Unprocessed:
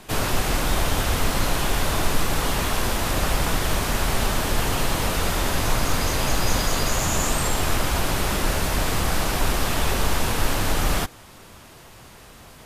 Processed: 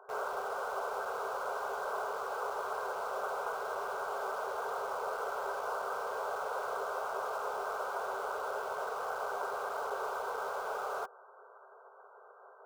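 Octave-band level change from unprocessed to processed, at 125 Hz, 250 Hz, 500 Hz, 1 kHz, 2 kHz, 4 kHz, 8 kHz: under -40 dB, under -25 dB, -8.0 dB, -7.5 dB, -13.0 dB, -26.0 dB, -27.0 dB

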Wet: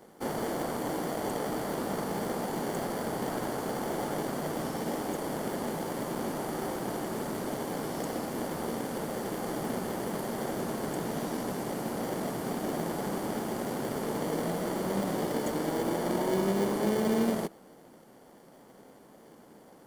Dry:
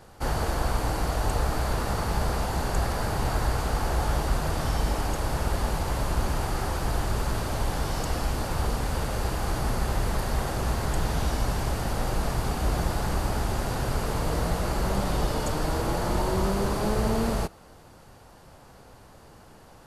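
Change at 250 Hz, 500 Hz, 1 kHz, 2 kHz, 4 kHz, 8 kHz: +0.5, -0.5, -5.0, -6.0, -7.0, -5.0 dB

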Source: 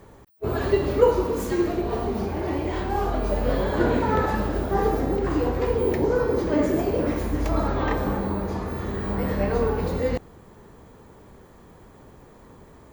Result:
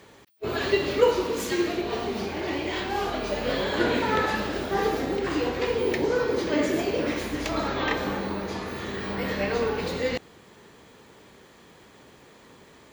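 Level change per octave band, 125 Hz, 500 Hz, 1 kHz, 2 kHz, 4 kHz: -9.0, -2.5, -2.0, +4.5, +9.0 dB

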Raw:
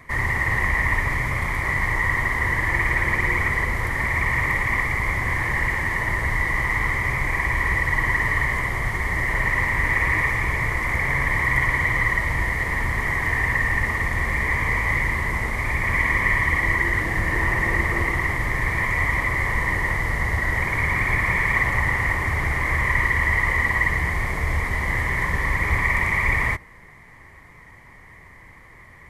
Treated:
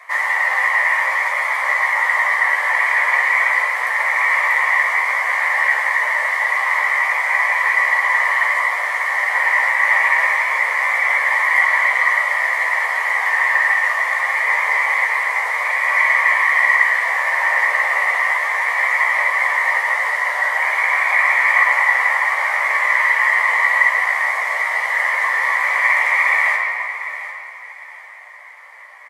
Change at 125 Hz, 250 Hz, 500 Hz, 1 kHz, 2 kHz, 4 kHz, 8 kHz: under -40 dB, under -30 dB, +1.5 dB, +8.0 dB, +7.0 dB, +5.5 dB, +3.5 dB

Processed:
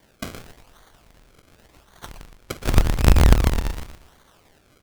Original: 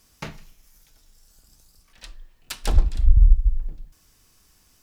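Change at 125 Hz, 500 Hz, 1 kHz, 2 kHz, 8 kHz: +4.0, +13.5, +11.5, +11.0, +7.5 dB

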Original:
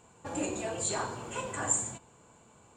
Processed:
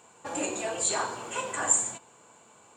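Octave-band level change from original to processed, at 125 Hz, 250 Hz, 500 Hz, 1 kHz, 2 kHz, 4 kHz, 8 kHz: -7.0, -0.5, +2.5, +4.5, +5.0, +5.5, +5.5 dB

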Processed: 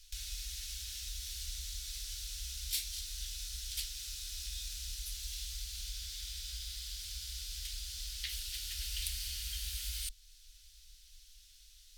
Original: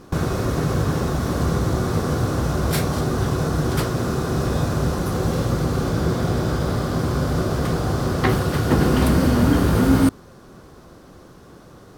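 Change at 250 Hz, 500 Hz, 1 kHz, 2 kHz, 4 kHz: under -40 dB, under -40 dB, under -40 dB, -21.5 dB, -5.0 dB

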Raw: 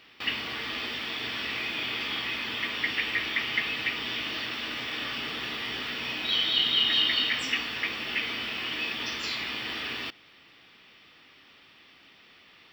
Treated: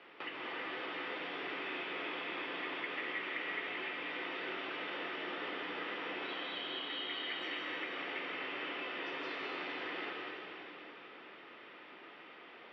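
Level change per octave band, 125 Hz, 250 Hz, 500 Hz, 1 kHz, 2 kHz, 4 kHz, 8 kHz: -15.0 dB, -5.5 dB, -0.5 dB, -3.0 dB, -9.0 dB, -16.0 dB, under -25 dB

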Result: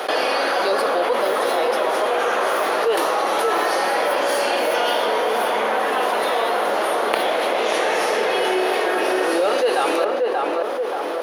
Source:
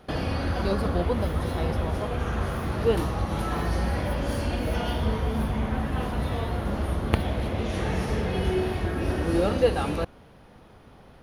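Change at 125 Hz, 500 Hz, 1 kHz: under -25 dB, +10.0 dB, +13.5 dB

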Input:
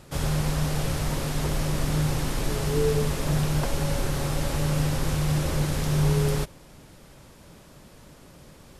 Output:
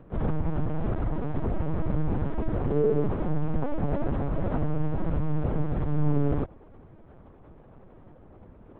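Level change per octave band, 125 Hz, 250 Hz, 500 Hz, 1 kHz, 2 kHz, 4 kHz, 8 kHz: -3.5 dB, -0.5 dB, -0.5 dB, -3.0 dB, -11.0 dB, under -20 dB, under -40 dB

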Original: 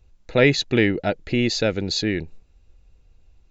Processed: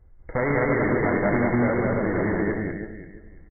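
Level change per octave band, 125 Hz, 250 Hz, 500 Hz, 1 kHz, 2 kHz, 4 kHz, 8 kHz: -0.5 dB, -0.5 dB, -1.0 dB, +6.0 dB, -1.5 dB, under -40 dB, n/a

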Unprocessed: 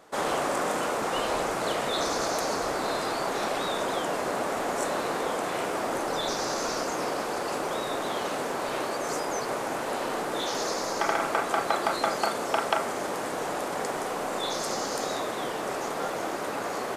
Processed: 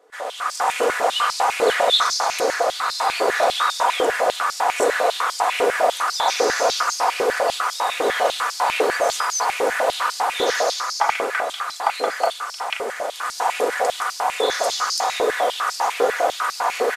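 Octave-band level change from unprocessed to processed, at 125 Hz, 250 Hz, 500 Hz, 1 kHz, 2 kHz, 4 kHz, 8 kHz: under -10 dB, -3.0 dB, +7.5 dB, +8.5 dB, +9.0 dB, +10.0 dB, +7.5 dB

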